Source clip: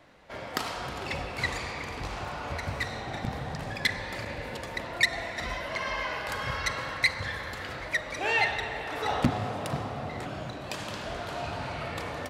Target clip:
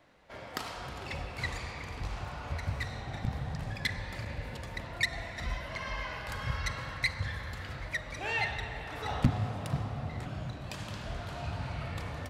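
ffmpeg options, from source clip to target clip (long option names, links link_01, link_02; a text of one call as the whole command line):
ffmpeg -i in.wav -af "asubboost=boost=3.5:cutoff=180,volume=-6dB" out.wav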